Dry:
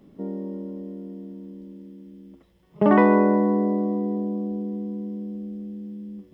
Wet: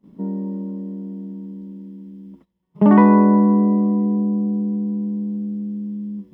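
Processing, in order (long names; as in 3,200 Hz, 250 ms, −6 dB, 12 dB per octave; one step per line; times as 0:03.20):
noise gate −52 dBFS, range −17 dB
hollow resonant body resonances 200/950 Hz, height 11 dB, ringing for 30 ms
level −2.5 dB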